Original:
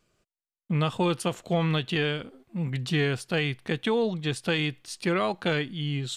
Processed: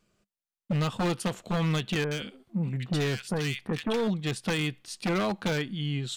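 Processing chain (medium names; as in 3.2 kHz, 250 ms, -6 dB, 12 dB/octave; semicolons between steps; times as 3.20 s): peaking EQ 200 Hz +9 dB 0.24 oct; wavefolder -20 dBFS; 2.04–4.08 s: bands offset in time lows, highs 70 ms, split 1.6 kHz; trim -1.5 dB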